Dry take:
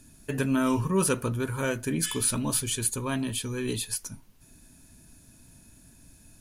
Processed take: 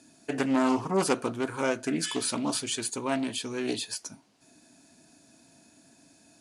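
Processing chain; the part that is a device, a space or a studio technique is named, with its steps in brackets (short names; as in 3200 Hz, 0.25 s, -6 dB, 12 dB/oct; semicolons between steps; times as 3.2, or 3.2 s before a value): full-range speaker at full volume (Doppler distortion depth 0.26 ms; speaker cabinet 240–8800 Hz, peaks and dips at 300 Hz +5 dB, 700 Hz +9 dB, 4600 Hz +4 dB)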